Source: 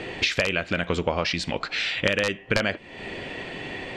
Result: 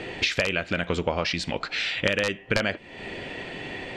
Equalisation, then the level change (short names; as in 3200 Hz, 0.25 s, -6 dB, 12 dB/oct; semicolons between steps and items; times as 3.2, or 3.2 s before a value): notch 1100 Hz, Q 27; -1.0 dB